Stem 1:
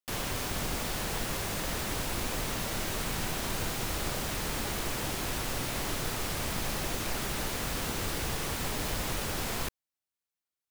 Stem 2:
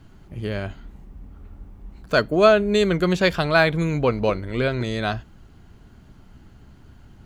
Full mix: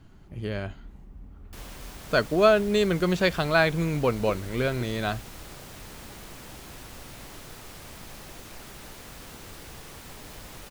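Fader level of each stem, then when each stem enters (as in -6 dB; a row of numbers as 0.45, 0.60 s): -10.5, -4.0 dB; 1.45, 0.00 s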